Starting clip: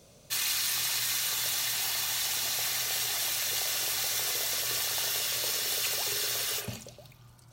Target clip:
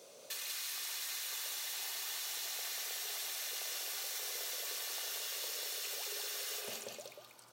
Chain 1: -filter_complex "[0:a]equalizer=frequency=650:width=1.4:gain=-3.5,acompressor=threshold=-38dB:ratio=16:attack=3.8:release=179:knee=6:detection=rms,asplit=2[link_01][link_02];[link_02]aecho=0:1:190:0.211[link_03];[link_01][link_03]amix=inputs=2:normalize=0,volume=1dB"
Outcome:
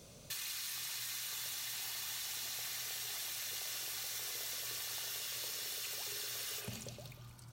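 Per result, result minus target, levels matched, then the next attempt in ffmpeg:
echo-to-direct −9 dB; 500 Hz band −4.0 dB
-filter_complex "[0:a]equalizer=frequency=650:width=1.4:gain=-3.5,acompressor=threshold=-38dB:ratio=16:attack=3.8:release=179:knee=6:detection=rms,asplit=2[link_01][link_02];[link_02]aecho=0:1:190:0.596[link_03];[link_01][link_03]amix=inputs=2:normalize=0,volume=1dB"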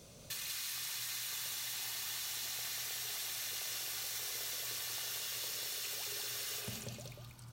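500 Hz band −4.0 dB
-filter_complex "[0:a]highpass=frequency=470:width_type=q:width=1.7,equalizer=frequency=650:width=1.4:gain=-3.5,acompressor=threshold=-38dB:ratio=16:attack=3.8:release=179:knee=6:detection=rms,asplit=2[link_01][link_02];[link_02]aecho=0:1:190:0.596[link_03];[link_01][link_03]amix=inputs=2:normalize=0,volume=1dB"

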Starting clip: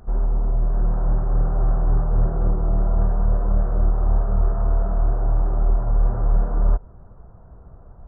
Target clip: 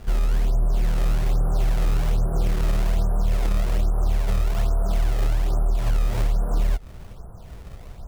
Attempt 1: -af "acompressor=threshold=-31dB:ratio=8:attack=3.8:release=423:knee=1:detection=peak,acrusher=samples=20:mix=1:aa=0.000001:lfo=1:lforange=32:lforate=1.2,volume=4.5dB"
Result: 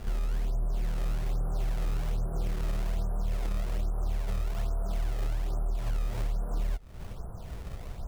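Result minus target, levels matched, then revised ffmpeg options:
downward compressor: peak gain reduction +9 dB
-af "acompressor=threshold=-20.5dB:ratio=8:attack=3.8:release=423:knee=1:detection=peak,acrusher=samples=20:mix=1:aa=0.000001:lfo=1:lforange=32:lforate=1.2,volume=4.5dB"

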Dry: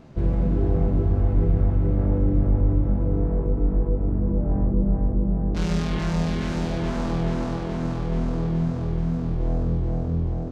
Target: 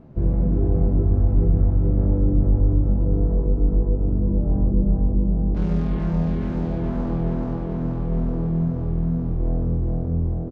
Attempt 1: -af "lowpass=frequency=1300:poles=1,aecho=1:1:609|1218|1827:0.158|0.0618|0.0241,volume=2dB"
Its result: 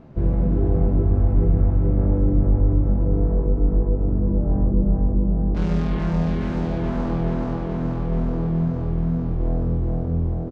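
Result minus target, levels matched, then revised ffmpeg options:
1,000 Hz band +3.5 dB
-af "lowpass=frequency=540:poles=1,aecho=1:1:609|1218|1827:0.158|0.0618|0.0241,volume=2dB"

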